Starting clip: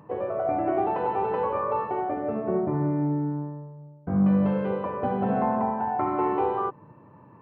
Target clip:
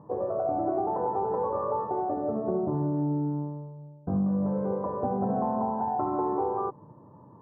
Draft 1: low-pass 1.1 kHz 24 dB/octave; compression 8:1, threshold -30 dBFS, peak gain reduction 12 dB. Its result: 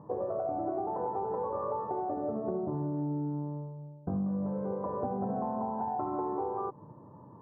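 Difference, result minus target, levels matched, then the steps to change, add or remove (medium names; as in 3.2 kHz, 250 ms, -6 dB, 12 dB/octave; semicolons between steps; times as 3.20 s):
compression: peak gain reduction +5.5 dB
change: compression 8:1, threshold -23.5 dBFS, peak gain reduction 6.5 dB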